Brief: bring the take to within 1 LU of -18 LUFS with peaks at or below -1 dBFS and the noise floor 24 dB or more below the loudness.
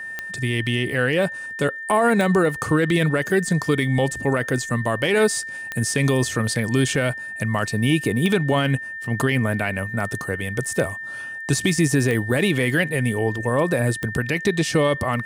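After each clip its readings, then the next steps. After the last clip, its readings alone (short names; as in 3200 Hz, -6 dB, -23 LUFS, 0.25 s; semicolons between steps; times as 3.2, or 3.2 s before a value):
clicks 6; steady tone 1800 Hz; tone level -30 dBFS; loudness -21.5 LUFS; peak -7.5 dBFS; loudness target -18.0 LUFS
-> de-click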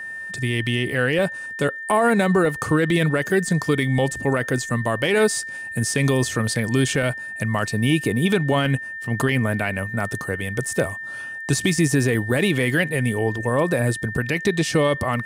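clicks 0; steady tone 1800 Hz; tone level -30 dBFS
-> notch 1800 Hz, Q 30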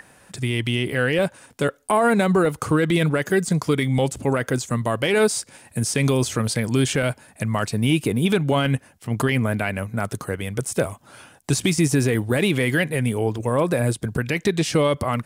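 steady tone none; loudness -22.0 LUFS; peak -8.0 dBFS; loudness target -18.0 LUFS
-> gain +4 dB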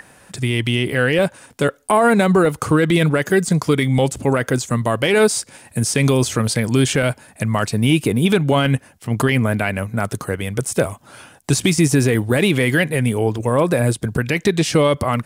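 loudness -18.0 LUFS; peak -4.0 dBFS; noise floor -49 dBFS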